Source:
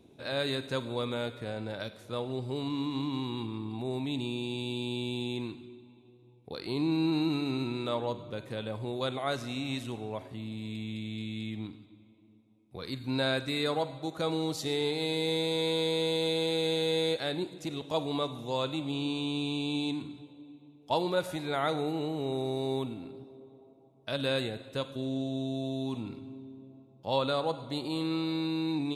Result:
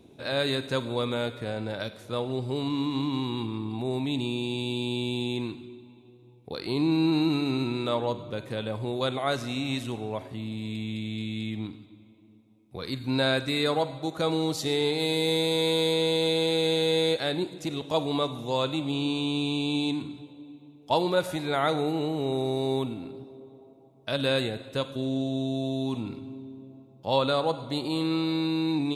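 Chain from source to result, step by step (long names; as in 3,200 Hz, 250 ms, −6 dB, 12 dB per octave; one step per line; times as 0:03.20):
0:14.99–0:15.94: high-shelf EQ 12,000 Hz +10 dB
level +4.5 dB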